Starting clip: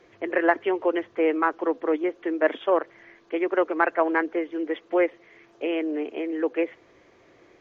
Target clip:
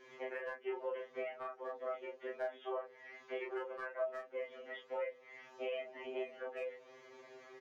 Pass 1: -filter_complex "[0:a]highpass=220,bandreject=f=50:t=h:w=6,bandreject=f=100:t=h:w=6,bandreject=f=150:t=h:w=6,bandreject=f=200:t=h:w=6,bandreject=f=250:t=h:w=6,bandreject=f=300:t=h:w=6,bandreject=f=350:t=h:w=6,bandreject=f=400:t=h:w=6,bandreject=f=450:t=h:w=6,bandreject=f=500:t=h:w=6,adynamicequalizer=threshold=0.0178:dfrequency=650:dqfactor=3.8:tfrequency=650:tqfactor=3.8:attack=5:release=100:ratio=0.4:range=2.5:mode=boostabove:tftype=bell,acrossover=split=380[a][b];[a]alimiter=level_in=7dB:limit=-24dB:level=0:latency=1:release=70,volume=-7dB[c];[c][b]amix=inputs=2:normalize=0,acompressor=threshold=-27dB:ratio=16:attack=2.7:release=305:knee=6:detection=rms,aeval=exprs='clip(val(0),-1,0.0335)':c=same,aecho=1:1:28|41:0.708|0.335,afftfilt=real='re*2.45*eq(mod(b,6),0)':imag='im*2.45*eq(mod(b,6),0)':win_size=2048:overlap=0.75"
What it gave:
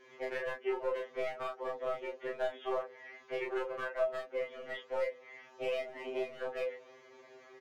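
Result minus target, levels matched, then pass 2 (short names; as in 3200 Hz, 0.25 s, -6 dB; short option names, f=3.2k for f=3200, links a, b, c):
compressor: peak gain reduction -6 dB
-filter_complex "[0:a]highpass=220,bandreject=f=50:t=h:w=6,bandreject=f=100:t=h:w=6,bandreject=f=150:t=h:w=6,bandreject=f=200:t=h:w=6,bandreject=f=250:t=h:w=6,bandreject=f=300:t=h:w=6,bandreject=f=350:t=h:w=6,bandreject=f=400:t=h:w=6,bandreject=f=450:t=h:w=6,bandreject=f=500:t=h:w=6,adynamicequalizer=threshold=0.0178:dfrequency=650:dqfactor=3.8:tfrequency=650:tqfactor=3.8:attack=5:release=100:ratio=0.4:range=2.5:mode=boostabove:tftype=bell,acrossover=split=380[a][b];[a]alimiter=level_in=7dB:limit=-24dB:level=0:latency=1:release=70,volume=-7dB[c];[c][b]amix=inputs=2:normalize=0,acompressor=threshold=-33.5dB:ratio=16:attack=2.7:release=305:knee=6:detection=rms,aeval=exprs='clip(val(0),-1,0.0335)':c=same,aecho=1:1:28|41:0.708|0.335,afftfilt=real='re*2.45*eq(mod(b,6),0)':imag='im*2.45*eq(mod(b,6),0)':win_size=2048:overlap=0.75"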